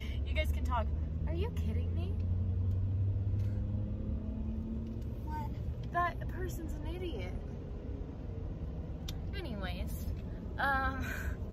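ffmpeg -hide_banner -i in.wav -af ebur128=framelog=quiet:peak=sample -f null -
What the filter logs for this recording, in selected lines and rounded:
Integrated loudness:
  I:         -37.2 LUFS
  Threshold: -47.2 LUFS
Loudness range:
  LRA:         6.3 LU
  Threshold: -57.7 LUFS
  LRA low:   -41.5 LUFS
  LRA high:  -35.1 LUFS
Sample peak:
  Peak:      -20.0 dBFS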